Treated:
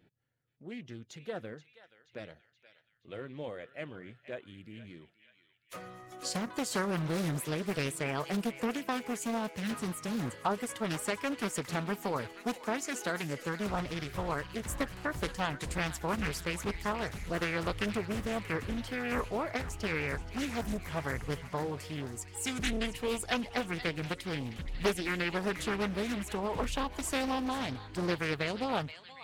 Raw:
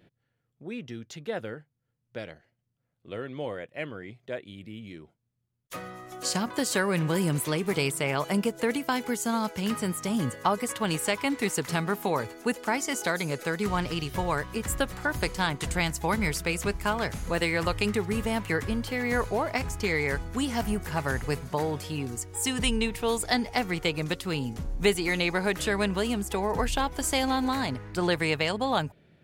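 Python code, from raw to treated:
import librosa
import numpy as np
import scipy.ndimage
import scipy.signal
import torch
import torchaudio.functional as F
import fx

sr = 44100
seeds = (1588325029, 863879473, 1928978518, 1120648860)

y = fx.spec_quant(x, sr, step_db=15)
y = fx.echo_banded(y, sr, ms=477, feedback_pct=64, hz=2800.0, wet_db=-11)
y = fx.doppler_dist(y, sr, depth_ms=0.65)
y = y * 10.0 ** (-6.0 / 20.0)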